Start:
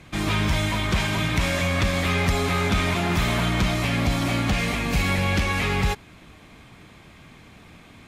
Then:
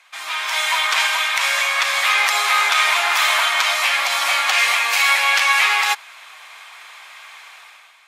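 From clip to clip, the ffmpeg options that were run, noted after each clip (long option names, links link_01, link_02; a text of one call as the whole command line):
ffmpeg -i in.wav -af "highpass=frequency=870:width=0.5412,highpass=frequency=870:width=1.3066,dynaudnorm=framelen=150:gausssize=7:maxgain=12.5dB" out.wav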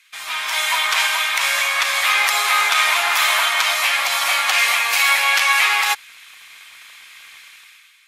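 ffmpeg -i in.wav -filter_complex "[0:a]equalizer=frequency=12000:width_type=o:width=0.62:gain=6,acrossover=split=1500|7600[link_01][link_02][link_03];[link_01]aeval=exprs='sgn(val(0))*max(abs(val(0))-0.00596,0)':channel_layout=same[link_04];[link_04][link_02][link_03]amix=inputs=3:normalize=0" out.wav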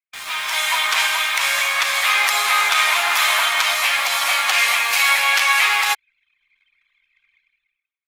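ffmpeg -i in.wav -filter_complex "[0:a]anlmdn=6.31,asplit=2[link_01][link_02];[link_02]acrusher=bits=4:mix=0:aa=0.000001,volume=-7dB[link_03];[link_01][link_03]amix=inputs=2:normalize=0,volume=-3.5dB" out.wav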